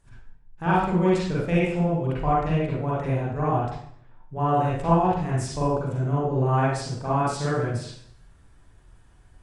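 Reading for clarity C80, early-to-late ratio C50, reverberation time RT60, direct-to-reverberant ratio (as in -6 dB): 3.5 dB, -3.0 dB, 0.65 s, -8.5 dB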